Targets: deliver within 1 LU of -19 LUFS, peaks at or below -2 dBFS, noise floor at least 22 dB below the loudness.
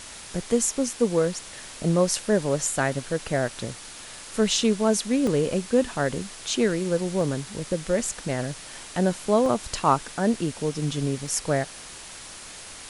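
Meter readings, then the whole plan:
dropouts 4; longest dropout 1.5 ms; noise floor -42 dBFS; noise floor target -47 dBFS; loudness -25.0 LUFS; peak level -5.5 dBFS; loudness target -19.0 LUFS
-> interpolate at 5.27/7.21/9.46/11.27 s, 1.5 ms; noise print and reduce 6 dB; trim +6 dB; peak limiter -2 dBFS

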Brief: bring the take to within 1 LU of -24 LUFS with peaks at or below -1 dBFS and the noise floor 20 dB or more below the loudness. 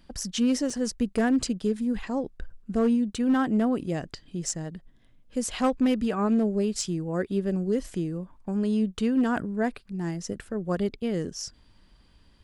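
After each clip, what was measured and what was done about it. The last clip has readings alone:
clipped samples 0.5%; clipping level -17.0 dBFS; dropouts 1; longest dropout 3.7 ms; loudness -27.5 LUFS; peak level -17.0 dBFS; loudness target -24.0 LUFS
-> clip repair -17 dBFS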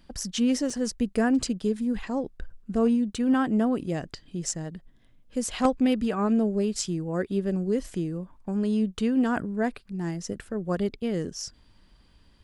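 clipped samples 0.0%; dropouts 1; longest dropout 3.7 ms
-> interpolate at 0.70 s, 3.7 ms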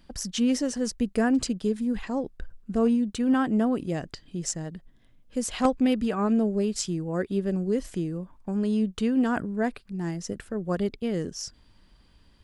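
dropouts 0; loudness -27.5 LUFS; peak level -8.0 dBFS; loudness target -24.0 LUFS
-> trim +3.5 dB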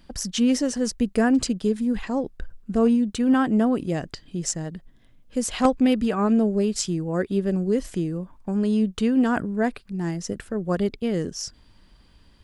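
loudness -24.0 LUFS; peak level -4.5 dBFS; noise floor -55 dBFS

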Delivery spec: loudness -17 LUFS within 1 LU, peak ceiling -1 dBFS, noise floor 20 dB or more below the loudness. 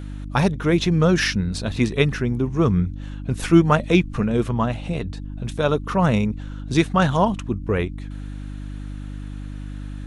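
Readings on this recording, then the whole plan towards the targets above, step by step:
hum 50 Hz; highest harmonic 300 Hz; hum level -30 dBFS; loudness -21.0 LUFS; peak level -2.0 dBFS; loudness target -17.0 LUFS
-> de-hum 50 Hz, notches 6; trim +4 dB; peak limiter -1 dBFS

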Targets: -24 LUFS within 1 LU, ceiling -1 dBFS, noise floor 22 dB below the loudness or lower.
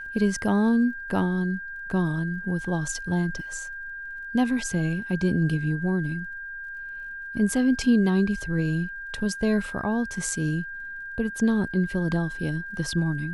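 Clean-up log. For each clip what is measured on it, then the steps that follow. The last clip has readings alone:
tick rate 42 per s; steady tone 1.6 kHz; tone level -34 dBFS; loudness -26.5 LUFS; peak level -11.0 dBFS; loudness target -24.0 LUFS
-> de-click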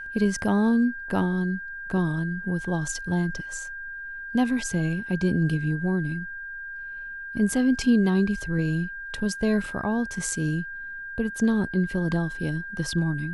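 tick rate 0.075 per s; steady tone 1.6 kHz; tone level -34 dBFS
-> band-stop 1.6 kHz, Q 30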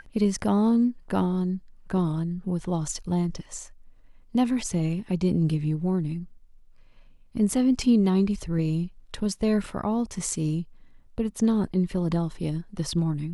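steady tone not found; loudness -26.0 LUFS; peak level -11.5 dBFS; loudness target -24.0 LUFS
-> trim +2 dB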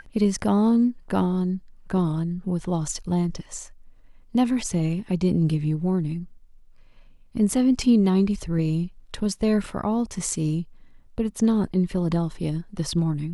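loudness -24.0 LUFS; peak level -9.5 dBFS; noise floor -51 dBFS

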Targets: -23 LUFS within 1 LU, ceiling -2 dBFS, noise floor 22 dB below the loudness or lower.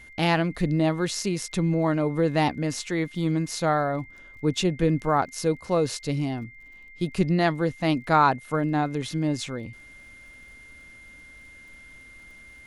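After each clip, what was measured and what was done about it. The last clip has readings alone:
tick rate 32 per s; steady tone 2.1 kHz; tone level -46 dBFS; loudness -25.5 LUFS; peak level -7.0 dBFS; loudness target -23.0 LUFS
-> de-click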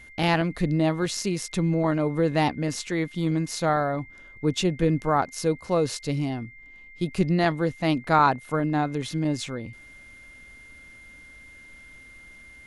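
tick rate 0 per s; steady tone 2.1 kHz; tone level -46 dBFS
-> band-stop 2.1 kHz, Q 30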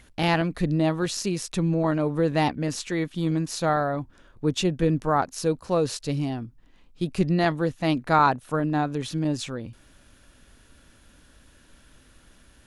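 steady tone not found; loudness -25.5 LUFS; peak level -7.0 dBFS; loudness target -23.0 LUFS
-> trim +2.5 dB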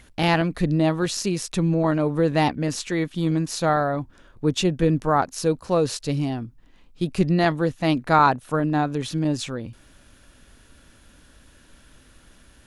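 loudness -23.0 LUFS; peak level -4.5 dBFS; noise floor -54 dBFS

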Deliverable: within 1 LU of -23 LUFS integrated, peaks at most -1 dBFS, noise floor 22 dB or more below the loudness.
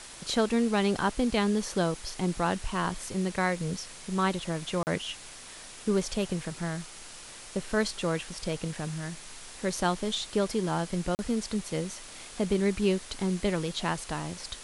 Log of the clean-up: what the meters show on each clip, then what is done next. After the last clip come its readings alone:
dropouts 2; longest dropout 39 ms; noise floor -46 dBFS; noise floor target -53 dBFS; loudness -30.5 LUFS; peak level -12.0 dBFS; loudness target -23.0 LUFS
-> interpolate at 4.83/11.15 s, 39 ms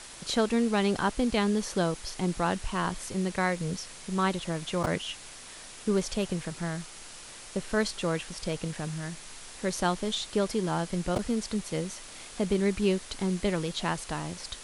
dropouts 0; noise floor -46 dBFS; noise floor target -52 dBFS
-> noise reduction 6 dB, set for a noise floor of -46 dBFS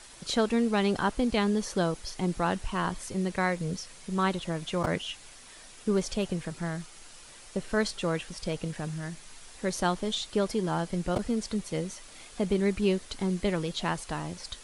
noise floor -50 dBFS; noise floor target -53 dBFS
-> noise reduction 6 dB, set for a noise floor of -50 dBFS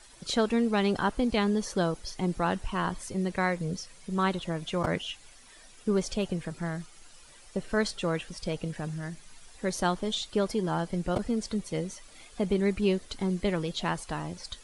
noise floor -53 dBFS; loudness -30.5 LUFS; peak level -12.0 dBFS; loudness target -23.0 LUFS
-> trim +7.5 dB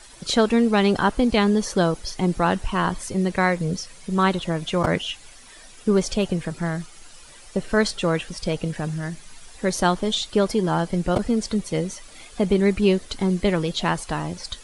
loudness -23.0 LUFS; peak level -4.5 dBFS; noise floor -46 dBFS

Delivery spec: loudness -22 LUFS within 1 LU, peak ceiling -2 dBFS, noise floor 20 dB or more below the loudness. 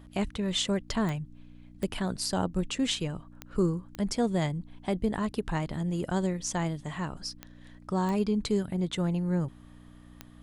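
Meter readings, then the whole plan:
clicks found 7; hum 60 Hz; highest harmonic 300 Hz; hum level -52 dBFS; loudness -31.0 LUFS; peak level -14.5 dBFS; loudness target -22.0 LUFS
-> de-click; de-hum 60 Hz, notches 5; trim +9 dB

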